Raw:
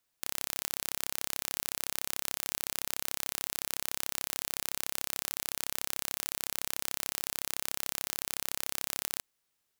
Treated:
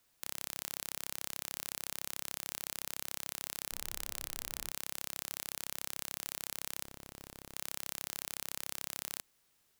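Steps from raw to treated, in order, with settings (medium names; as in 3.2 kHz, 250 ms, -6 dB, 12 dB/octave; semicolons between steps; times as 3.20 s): bass shelf 330 Hz +3.5 dB; wavefolder -14 dBFS; 3.71–4.69 s: added noise brown -61 dBFS; 6.84–7.55 s: hard clipper -32.5 dBFS, distortion -13 dB; trim +6.5 dB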